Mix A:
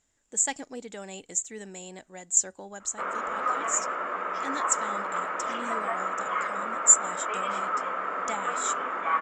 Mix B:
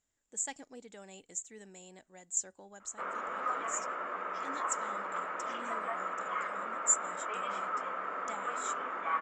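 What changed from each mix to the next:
speech −10.5 dB
background −6.5 dB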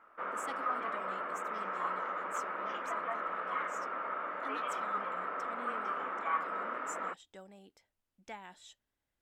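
background: entry −2.80 s
master: remove low-pass with resonance 7,200 Hz, resonance Q 13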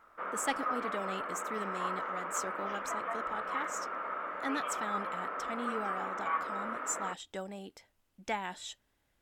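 speech +11.5 dB

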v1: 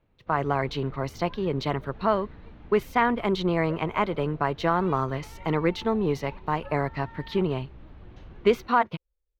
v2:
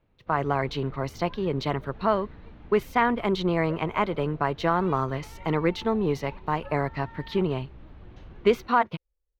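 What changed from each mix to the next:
nothing changed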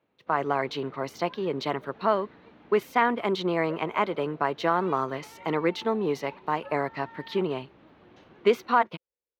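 master: add high-pass filter 240 Hz 12 dB per octave

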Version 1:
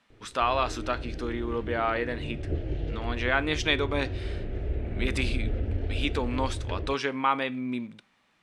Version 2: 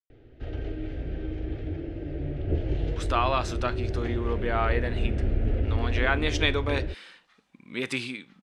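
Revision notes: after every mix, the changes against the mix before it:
speech: entry +2.75 s
background +3.5 dB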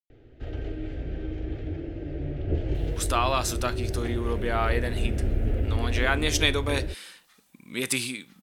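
speech: add bass and treble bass +2 dB, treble +9 dB
master: remove low-pass filter 6,000 Hz 12 dB per octave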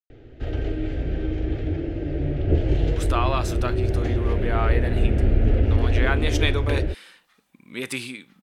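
speech: add bass and treble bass −2 dB, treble −9 dB
background +7.0 dB

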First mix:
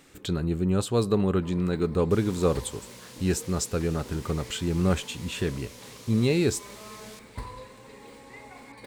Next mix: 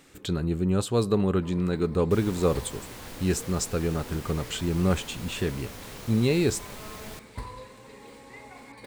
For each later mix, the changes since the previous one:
second sound: remove resonant band-pass 6,000 Hz, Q 0.68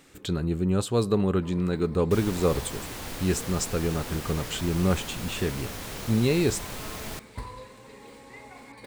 second sound +5.5 dB

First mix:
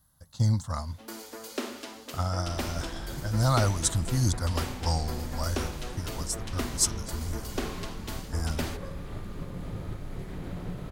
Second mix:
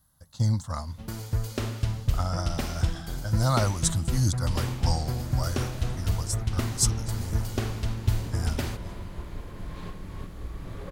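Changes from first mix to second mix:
first sound: remove Butterworth high-pass 230 Hz 96 dB per octave
second sound: entry +2.05 s

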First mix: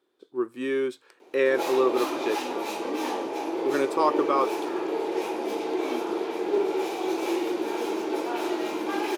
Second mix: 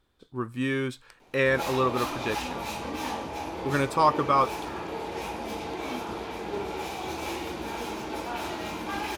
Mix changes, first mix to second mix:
speech +4.0 dB
master: remove high-pass with resonance 360 Hz, resonance Q 3.8

